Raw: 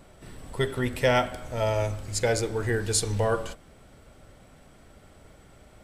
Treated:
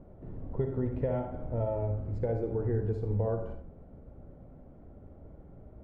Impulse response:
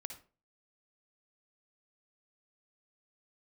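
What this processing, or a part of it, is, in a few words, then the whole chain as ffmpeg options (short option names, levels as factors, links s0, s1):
television next door: -filter_complex "[0:a]acompressor=threshold=0.0398:ratio=4,lowpass=530[s0];[1:a]atrim=start_sample=2205[s1];[s0][s1]afir=irnorm=-1:irlink=0,volume=2"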